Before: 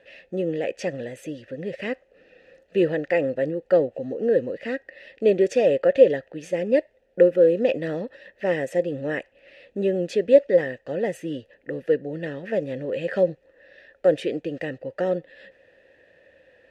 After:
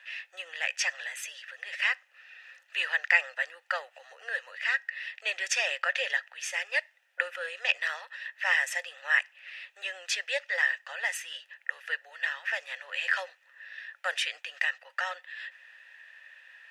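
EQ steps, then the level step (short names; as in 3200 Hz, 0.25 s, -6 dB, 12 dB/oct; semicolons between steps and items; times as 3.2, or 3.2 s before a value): steep high-pass 990 Hz 36 dB/oct; dynamic EQ 5500 Hz, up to +4 dB, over -57 dBFS, Q 2.5; bell 4300 Hz -3.5 dB 0.3 oct; +8.5 dB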